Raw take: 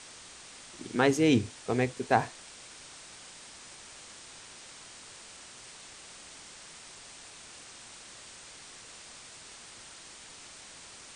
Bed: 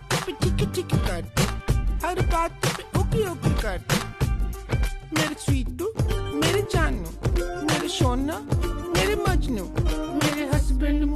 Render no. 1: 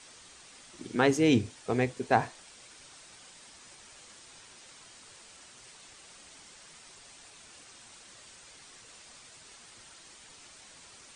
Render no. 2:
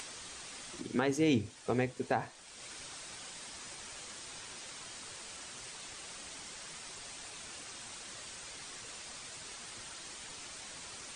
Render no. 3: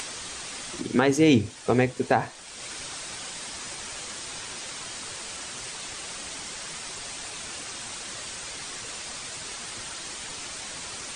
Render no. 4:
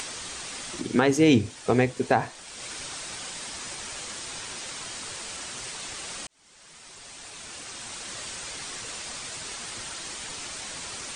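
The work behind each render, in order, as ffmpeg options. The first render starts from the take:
-af "afftdn=nr=6:nf=-50"
-af "acompressor=mode=upward:threshold=-39dB:ratio=2.5,alimiter=limit=-19.5dB:level=0:latency=1:release=341"
-af "volume=10dB"
-filter_complex "[0:a]asplit=2[a][b];[a]atrim=end=6.27,asetpts=PTS-STARTPTS,afade=t=out:st=6.266:d=0.004:c=hsin[c];[b]atrim=start=6.27,asetpts=PTS-STARTPTS,afade=t=in:d=1.95[d];[c][d]concat=n=2:v=0:a=1"

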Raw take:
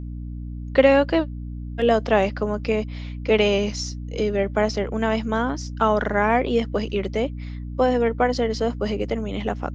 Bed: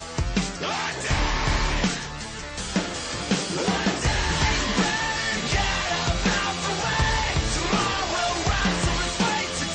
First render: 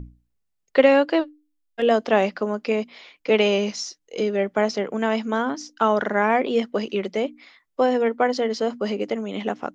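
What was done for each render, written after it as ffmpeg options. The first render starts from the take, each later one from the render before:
-af "bandreject=f=60:t=h:w=6,bandreject=f=120:t=h:w=6,bandreject=f=180:t=h:w=6,bandreject=f=240:t=h:w=6,bandreject=f=300:t=h:w=6"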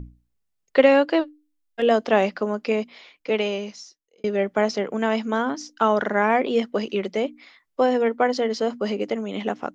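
-filter_complex "[0:a]asplit=2[a][b];[a]atrim=end=4.24,asetpts=PTS-STARTPTS,afade=t=out:st=2.75:d=1.49[c];[b]atrim=start=4.24,asetpts=PTS-STARTPTS,afade=t=in:d=0.004:c=hsin[d];[c][d]concat=n=2:v=0:a=1"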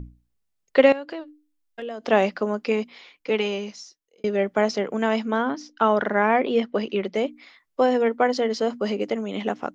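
-filter_complex "[0:a]asettb=1/sr,asplit=3[a][b][c];[a]atrim=end=0.924[d];[b]atrim=start=0.92:end=2.04,asetpts=PTS-STARTPTS,afade=t=in:d=0.004:c=qsin,afade=t=out:st=1.116:d=0.004:c=qsin,acompressor=threshold=-32dB:ratio=4:attack=3.2:release=140:knee=1:detection=peak[e];[c]atrim=start=2.036[f];[d][e]acrossfade=d=0.004:c1=hsin:c2=qsin[g];[g][f]acrossfade=d=0.004:c1=qsin:c2=hsin,asettb=1/sr,asplit=3[h][i][j];[h]atrim=end=2.614[k];[i]atrim=start=2.61:end=3.68,asetpts=PTS-STARTPTS,afade=t=in:d=0.004:c=qsin,afade=t=out:st=1.066:d=0.004:c=qsin,bandreject=f=630:w=7.9[l];[j]atrim=start=3.676[m];[k][l]acrossfade=d=0.004:c1=hsin:c2=qsin[n];[n][m]acrossfade=d=0.004:c1=qsin:c2=hsin,asettb=1/sr,asplit=3[o][p][q];[o]atrim=end=5.234[r];[p]atrim=start=5.23:end=7.15,asetpts=PTS-STARTPTS,afade=t=in:d=0.004:c=qsin,afade=t=out:st=1.916:d=0.004:c=qsin,lowpass=4.3k[s];[q]atrim=start=7.146[t];[r][s]acrossfade=d=0.004:c1=hsin:c2=qsin[u];[u][t]acrossfade=d=0.004:c1=qsin:c2=hsin"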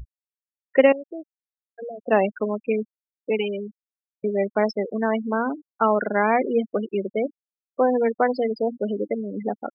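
-af "afftfilt=real='re*gte(hypot(re,im),0.112)':imag='im*gte(hypot(re,im),0.112)':win_size=1024:overlap=0.75"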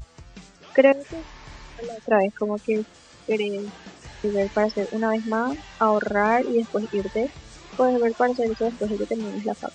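-filter_complex "[1:a]volume=-19.5dB[a];[0:a][a]amix=inputs=2:normalize=0"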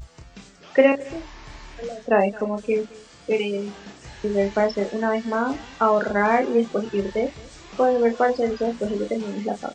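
-filter_complex "[0:a]asplit=2[a][b];[b]adelay=30,volume=-6dB[c];[a][c]amix=inputs=2:normalize=0,aecho=1:1:218:0.075"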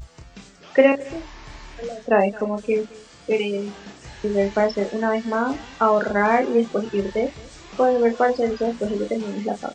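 -af "volume=1dB"

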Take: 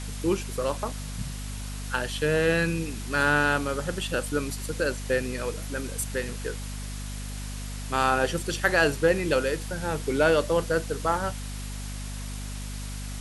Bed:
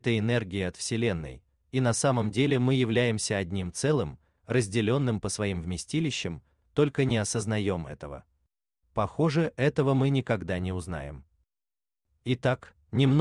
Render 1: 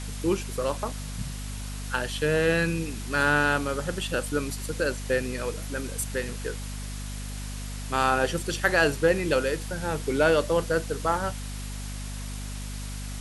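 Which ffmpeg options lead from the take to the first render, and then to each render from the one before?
-af anull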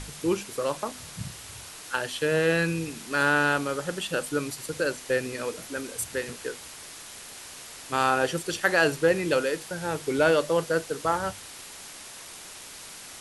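-af "bandreject=f=50:t=h:w=6,bandreject=f=100:t=h:w=6,bandreject=f=150:t=h:w=6,bandreject=f=200:t=h:w=6,bandreject=f=250:t=h:w=6"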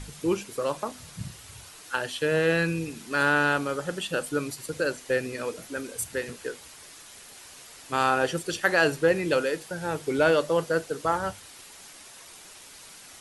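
-af "afftdn=nr=6:nf=-44"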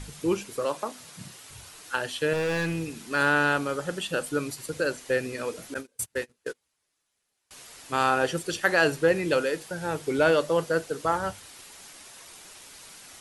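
-filter_complex "[0:a]asettb=1/sr,asplit=3[a][b][c];[a]atrim=end=0.654[d];[b]atrim=start=0.65:end=1.51,asetpts=PTS-STARTPTS,afade=t=in:d=0.004:c=qsin,afade=t=out:st=0.856:d=0.004:c=qsin,highpass=210[e];[c]atrim=start=1.506[f];[d][e]acrossfade=d=0.004:c1=hsin:c2=qsin[g];[g][f]acrossfade=d=0.004:c1=qsin:c2=hsin,asettb=1/sr,asplit=3[h][i][j];[h]atrim=end=2.334[k];[i]atrim=start=2.33:end=2.98,asetpts=PTS-STARTPTS,afade=t=in:d=0.004:c=qsin,afade=t=out:st=0.646:d=0.004:c=qsin,asoftclip=type=hard:threshold=-24dB[l];[j]atrim=start=2.976[m];[k][l]acrossfade=d=0.004:c1=hsin:c2=qsin[n];[n][m]acrossfade=d=0.004:c1=qsin:c2=hsin,asettb=1/sr,asplit=3[o][p][q];[o]atrim=end=5.744[r];[p]atrim=start=5.74:end=7.51,asetpts=PTS-STARTPTS,afade=t=in:d=0.004:c=qsin,afade=t=out:st=1.766:d=0.004:c=qsin,agate=range=-31dB:threshold=-34dB:ratio=16:release=100:detection=peak[s];[q]atrim=start=7.506[t];[r][s]acrossfade=d=0.004:c1=hsin:c2=qsin[u];[u][t]acrossfade=d=0.004:c1=qsin:c2=hsin"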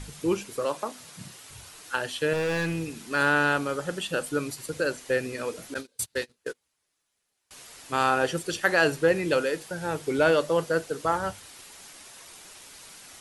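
-filter_complex "[0:a]asettb=1/sr,asplit=3[a][b][c];[a]atrim=end=5.744[d];[b]atrim=start=5.74:end=6.35,asetpts=PTS-STARTPTS,afade=t=in:d=0.004:c=qsin,afade=t=out:st=0.606:d=0.004:c=qsin,equalizer=f=4.1k:t=o:w=0.7:g=10[e];[c]atrim=start=6.346[f];[d][e]acrossfade=d=0.004:c1=hsin:c2=qsin[g];[g][f]acrossfade=d=0.004:c1=qsin:c2=hsin"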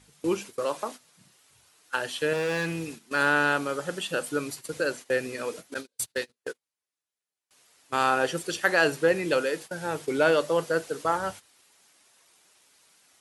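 -af "highpass=f=180:p=1,agate=range=-14dB:threshold=-39dB:ratio=16:detection=peak"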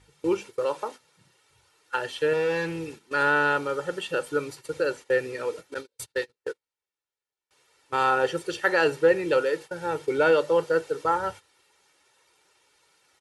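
-af "lowpass=f=3.1k:p=1,aecho=1:1:2.2:0.6"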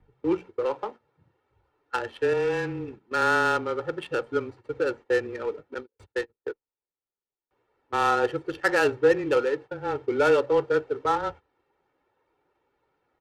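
-af "afreqshift=-19,adynamicsmooth=sensitivity=3:basefreq=1.1k"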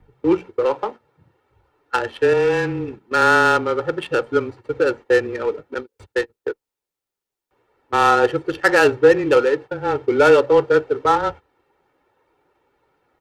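-af "volume=8dB,alimiter=limit=-3dB:level=0:latency=1"

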